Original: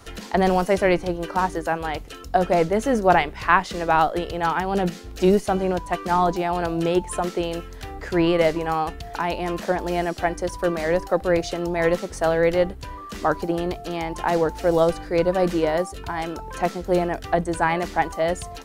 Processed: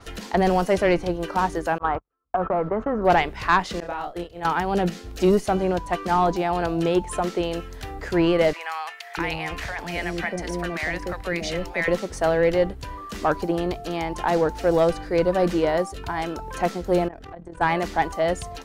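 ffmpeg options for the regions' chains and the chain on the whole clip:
ffmpeg -i in.wav -filter_complex "[0:a]asettb=1/sr,asplit=3[link_01][link_02][link_03];[link_01]atrim=end=1.784[link_04];[link_02]atrim=start=1.78:end=3.05,asetpts=PTS-STARTPTS,afade=type=in:duration=0.004:curve=qsin,afade=type=out:start_time=1.266:duration=0.004:curve=qsin,agate=range=-46dB:threshold=-30dB:ratio=16:release=100:detection=peak,acompressor=threshold=-21dB:ratio=10:attack=3.2:release=140:knee=1:detection=peak,lowpass=frequency=1200:width_type=q:width=4.5[link_05];[link_03]atrim=start=3.046[link_06];[link_04][link_05]acrossfade=duration=0.004:curve1=hsin:curve2=qsin[link_07];[link_07][link_06]acrossfade=duration=0.004:curve1=qsin:curve2=hsin,asettb=1/sr,asplit=3[link_08][link_09][link_10];[link_08]atrim=end=3.804[link_11];[link_09]atrim=start=3.8:end=4.45,asetpts=PTS-STARTPTS,afade=type=in:duration=0.004:curve=qsin,afade=type=out:start_time=0.646:duration=0.004:curve=qsin,agate=range=-33dB:threshold=-19dB:ratio=3:release=100:detection=peak,acompressor=threshold=-27dB:ratio=12:attack=3.2:release=140:knee=1:detection=peak,asplit=2[link_12][link_13];[link_13]adelay=29,volume=-3dB[link_14];[link_12][link_14]amix=inputs=2:normalize=0,atrim=end_sample=28665[link_15];[link_10]atrim=start=4.446[link_16];[link_11][link_15]acrossfade=duration=0.004:curve1=hsin:curve2=qsin[link_17];[link_17][link_16]acrossfade=duration=0.004:curve1=qsin:curve2=hsin,asettb=1/sr,asplit=3[link_18][link_19][link_20];[link_18]atrim=end=8.534[link_21];[link_19]atrim=start=8.53:end=11.88,asetpts=PTS-STARTPTS,afade=type=in:duration=0.004:curve=qsin,afade=type=out:start_time=3.346:duration=0.004:curve=qsin,acrossover=split=200|3000[link_22][link_23][link_24];[link_23]acompressor=threshold=-27dB:ratio=2.5:attack=3.2:release=140:knee=2.83:detection=peak[link_25];[link_22][link_25][link_24]amix=inputs=3:normalize=0,equalizer=frequency=2100:width_type=o:width=0.78:gain=10,acrossover=split=690[link_26][link_27];[link_26]adelay=640[link_28];[link_28][link_27]amix=inputs=2:normalize=0,atrim=end_sample=147735[link_29];[link_20]atrim=start=11.876[link_30];[link_21][link_29]acrossfade=duration=0.004:curve1=hsin:curve2=qsin[link_31];[link_31][link_30]acrossfade=duration=0.004:curve1=qsin:curve2=hsin,asettb=1/sr,asplit=3[link_32][link_33][link_34];[link_32]atrim=end=17.084[link_35];[link_33]atrim=start=17.08:end=17.61,asetpts=PTS-STARTPTS,afade=type=in:duration=0.004:curve=qsin,afade=type=out:start_time=0.526:duration=0.004:curve=qsin,lowpass=frequency=1800:poles=1,acompressor=threshold=-32dB:ratio=16:attack=3.2:release=140:knee=1:detection=peak,tremolo=f=38:d=0.71[link_36];[link_34]atrim=start=17.606[link_37];[link_35][link_36]acrossfade=duration=0.004:curve1=hsin:curve2=qsin[link_38];[link_38][link_37]acrossfade=duration=0.004:curve1=qsin:curve2=hsin,acontrast=79,adynamicequalizer=threshold=0.01:dfrequency=7500:dqfactor=0.7:tfrequency=7500:tqfactor=0.7:attack=5:release=100:ratio=0.375:range=2.5:mode=cutabove:tftype=highshelf,volume=-6.5dB" out.wav

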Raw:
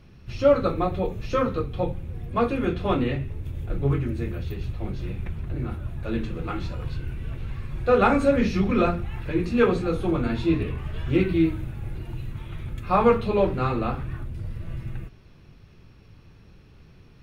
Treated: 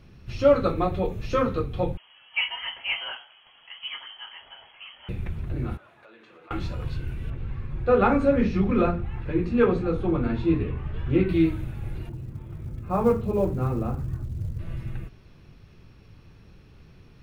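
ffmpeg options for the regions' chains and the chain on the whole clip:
ffmpeg -i in.wav -filter_complex "[0:a]asettb=1/sr,asplit=3[link_01][link_02][link_03];[link_01]atrim=end=1.974[link_04];[link_02]atrim=start=1.97:end=5.09,asetpts=PTS-STARTPTS,afade=type=in:duration=0.004:curve=qsin,afade=type=out:start_time=3.116:duration=0.004:curve=qsin,highpass=620,lowpass=frequency=2900:width_type=q:width=0.5098,lowpass=frequency=2900:width_type=q:width=0.6013,lowpass=frequency=2900:width_type=q:width=0.9,lowpass=frequency=2900:width_type=q:width=2.563,afreqshift=-3400[link_05];[link_03]atrim=start=5.086[link_06];[link_04][link_05]acrossfade=duration=0.004:curve1=hsin:curve2=qsin[link_07];[link_07][link_06]acrossfade=duration=0.004:curve1=qsin:curve2=hsin,asettb=1/sr,asplit=3[link_08][link_09][link_10];[link_08]atrim=end=5.774[link_11];[link_09]atrim=start=5.77:end=6.51,asetpts=PTS-STARTPTS,afade=type=in:duration=0.004:curve=qsin,afade=type=out:start_time=0.736:duration=0.004:curve=qsin,highpass=740,acompressor=threshold=-46dB:ratio=12:attack=3.2:release=140:knee=1:detection=peak,aemphasis=mode=reproduction:type=75kf[link_12];[link_10]atrim=start=6.506[link_13];[link_11][link_12]acrossfade=duration=0.004:curve1=hsin:curve2=qsin[link_14];[link_14][link_13]acrossfade=duration=0.004:curve1=qsin:curve2=hsin,asettb=1/sr,asplit=3[link_15][link_16][link_17];[link_15]atrim=end=7.304[link_18];[link_16]atrim=start=7.3:end=11.29,asetpts=PTS-STARTPTS,afade=type=in:duration=0.004:curve=qsin,afade=type=out:start_time=3.986:duration=0.004:curve=qsin,lowpass=frequency=1600:poles=1,bandreject=frequency=640:width=12[link_19];[link_17]atrim=start=11.286[link_20];[link_18][link_19]acrossfade=duration=0.004:curve1=hsin:curve2=qsin[link_21];[link_21][link_20]acrossfade=duration=0.004:curve1=qsin:curve2=hsin,asettb=1/sr,asplit=3[link_22][link_23][link_24];[link_22]atrim=end=12.094[link_25];[link_23]atrim=start=12.09:end=14.59,asetpts=PTS-STARTPTS,afade=type=in:duration=0.004:curve=qsin,afade=type=out:start_time=2.496:duration=0.004:curve=qsin,asubboost=boost=3.5:cutoff=150,bandpass=frequency=230:width_type=q:width=0.5,acrusher=bits=9:mode=log:mix=0:aa=0.000001[link_26];[link_24]atrim=start=14.586[link_27];[link_25][link_26]acrossfade=duration=0.004:curve1=hsin:curve2=qsin[link_28];[link_28][link_27]acrossfade=duration=0.004:curve1=qsin:curve2=hsin" out.wav

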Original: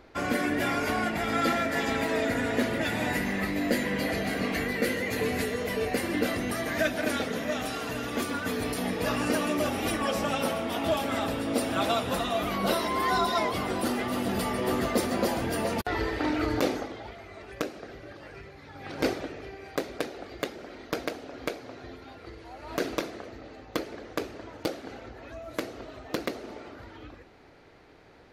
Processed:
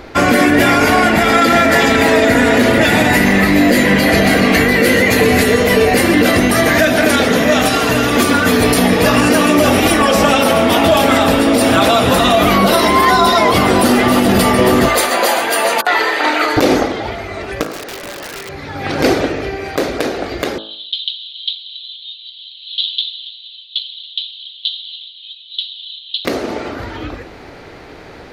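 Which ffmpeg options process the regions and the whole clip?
ffmpeg -i in.wav -filter_complex "[0:a]asettb=1/sr,asplit=3[link_01][link_02][link_03];[link_01]atrim=end=14.894[link_04];[link_02]atrim=start=14.89:end=16.57,asetpts=PTS-STARTPTS,afade=type=in:duration=0.004:curve=qsin,afade=type=out:start_time=1.676:duration=0.004:curve=qsin,highpass=690,bandreject=frequency=5400:width=6.3[link_05];[link_03]atrim=start=16.566[link_06];[link_04][link_05]acrossfade=duration=0.004:curve1=hsin:curve2=qsin[link_07];[link_07][link_06]acrossfade=duration=0.004:curve1=qsin:curve2=hsin,asettb=1/sr,asplit=3[link_08][link_09][link_10];[link_08]atrim=end=17.634[link_11];[link_09]atrim=start=17.63:end=18.49,asetpts=PTS-STARTPTS,afade=type=in:duration=0.004:curve=qsin,afade=type=out:start_time=0.856:duration=0.004:curve=qsin,highpass=320,acompressor=threshold=-42dB:ratio=16:attack=3.2:release=140:knee=1:detection=peak,aeval=exprs='(mod(112*val(0)+1,2)-1)/112':channel_layout=same[link_12];[link_10]atrim=start=18.486[link_13];[link_11][link_12]acrossfade=duration=0.004:curve1=hsin:curve2=qsin[link_14];[link_14][link_13]acrossfade=duration=0.004:curve1=qsin:curve2=hsin,asettb=1/sr,asplit=3[link_15][link_16][link_17];[link_15]atrim=end=20.584[link_18];[link_16]atrim=start=20.58:end=26.25,asetpts=PTS-STARTPTS,afade=type=in:duration=0.004:curve=qsin,afade=type=out:start_time=5.666:duration=0.004:curve=qsin,aeval=exprs='0.266*sin(PI/2*2.24*val(0)/0.266)':channel_layout=same,asuperpass=centerf=3500:order=8:qfactor=3.5,aecho=1:1:279:0.141,atrim=end_sample=250047[link_19];[link_17]atrim=start=26.246[link_20];[link_18][link_19]acrossfade=duration=0.004:curve1=hsin:curve2=qsin[link_21];[link_21][link_20]acrossfade=duration=0.004:curve1=qsin:curve2=hsin,bandreject=frequency=54.4:width_type=h:width=4,bandreject=frequency=108.8:width_type=h:width=4,bandreject=frequency=163.2:width_type=h:width=4,bandreject=frequency=217.6:width_type=h:width=4,bandreject=frequency=272:width_type=h:width=4,bandreject=frequency=326.4:width_type=h:width=4,bandreject=frequency=380.8:width_type=h:width=4,bandreject=frequency=435.2:width_type=h:width=4,bandreject=frequency=489.6:width_type=h:width=4,bandreject=frequency=544:width_type=h:width=4,bandreject=frequency=598.4:width_type=h:width=4,bandreject=frequency=652.8:width_type=h:width=4,bandreject=frequency=707.2:width_type=h:width=4,bandreject=frequency=761.6:width_type=h:width=4,bandreject=frequency=816:width_type=h:width=4,bandreject=frequency=870.4:width_type=h:width=4,bandreject=frequency=924.8:width_type=h:width=4,bandreject=frequency=979.2:width_type=h:width=4,bandreject=frequency=1033.6:width_type=h:width=4,bandreject=frequency=1088:width_type=h:width=4,bandreject=frequency=1142.4:width_type=h:width=4,bandreject=frequency=1196.8:width_type=h:width=4,bandreject=frequency=1251.2:width_type=h:width=4,bandreject=frequency=1305.6:width_type=h:width=4,bandreject=frequency=1360:width_type=h:width=4,bandreject=frequency=1414.4:width_type=h:width=4,bandreject=frequency=1468.8:width_type=h:width=4,bandreject=frequency=1523.2:width_type=h:width=4,bandreject=frequency=1577.6:width_type=h:width=4,bandreject=frequency=1632:width_type=h:width=4,bandreject=frequency=1686.4:width_type=h:width=4,bandreject=frequency=1740.8:width_type=h:width=4,alimiter=level_in=21dB:limit=-1dB:release=50:level=0:latency=1,volume=-1dB" out.wav

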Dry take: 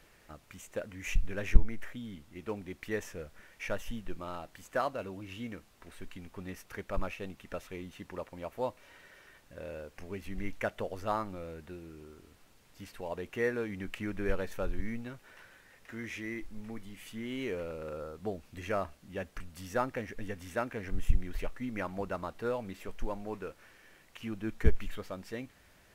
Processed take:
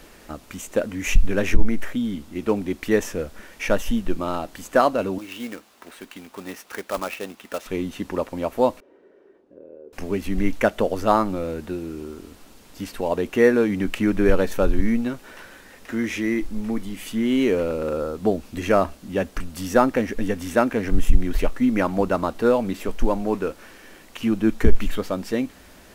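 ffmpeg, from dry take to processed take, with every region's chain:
ffmpeg -i in.wav -filter_complex "[0:a]asettb=1/sr,asplit=3[link_01][link_02][link_03];[link_01]atrim=end=5.184[link_04];[link_02]atrim=start=5.18:end=7.66,asetpts=PTS-STARTPTS,afade=type=in:duration=0.004:curve=qsin,afade=type=out:start_time=2.476:duration=0.004:curve=qsin,highpass=frequency=790:poles=1,highshelf=frequency=4000:gain=-7,acrusher=bits=2:mode=log:mix=0:aa=0.000001[link_05];[link_03]atrim=start=7.656[link_06];[link_04][link_05]acrossfade=duration=0.004:curve1=hsin:curve2=qsin[link_07];[link_07][link_06]acrossfade=duration=0.004:curve1=qsin:curve2=hsin,asettb=1/sr,asplit=3[link_08][link_09][link_10];[link_08]atrim=end=8.804[link_11];[link_09]atrim=start=8.8:end=9.93,asetpts=PTS-STARTPTS,afade=type=in:duration=0.004:curve=qsin,afade=type=out:start_time=1.126:duration=0.004:curve=qsin,acompressor=threshold=-49dB:ratio=5:attack=3.2:release=140:knee=1:detection=peak,bandpass=frequency=390:width_type=q:width=3.5,asplit=2[link_12][link_13];[link_13]adelay=37,volume=-11dB[link_14];[link_12][link_14]amix=inputs=2:normalize=0,atrim=end_sample=49833[link_15];[link_10]atrim=start=9.926[link_16];[link_11][link_15]acrossfade=duration=0.004:curve1=hsin:curve2=qsin[link_17];[link_17][link_16]acrossfade=duration=0.004:curve1=qsin:curve2=hsin,equalizer=frequency=125:width_type=o:width=1:gain=-7,equalizer=frequency=250:width_type=o:width=1:gain=6,equalizer=frequency=2000:width_type=o:width=1:gain=-4,alimiter=level_in=16.5dB:limit=-1dB:release=50:level=0:latency=1,volume=-2dB" out.wav

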